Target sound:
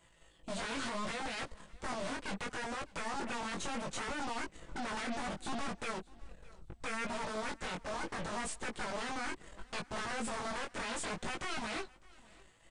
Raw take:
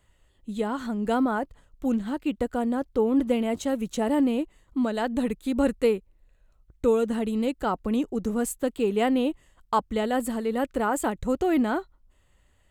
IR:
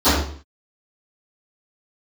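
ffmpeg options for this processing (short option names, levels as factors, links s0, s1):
-filter_complex "[0:a]acrossover=split=620[s0][s1];[s0]dynaudnorm=f=610:g=9:m=2.99[s2];[s2][s1]amix=inputs=2:normalize=0,lowshelf=f=120:g=-11,acompressor=threshold=0.0447:ratio=10,alimiter=level_in=1.41:limit=0.0631:level=0:latency=1:release=20,volume=0.708,aecho=1:1:6:0.57,aeval=exprs='0.0119*(abs(mod(val(0)/0.0119+3,4)-2)-1)':c=same,aeval=exprs='0.0126*(cos(1*acos(clip(val(0)/0.0126,-1,1)))-cos(1*PI/2))+0.000891*(cos(3*acos(clip(val(0)/0.0126,-1,1)))-cos(3*PI/2))+0.00224*(cos(8*acos(clip(val(0)/0.0126,-1,1)))-cos(8*PI/2))':c=same,flanger=delay=17:depth=5:speed=0.7,aecho=1:1:607|1214:0.0668|0.014,volume=2.51" -ar 32000 -c:a mp2 -b:a 192k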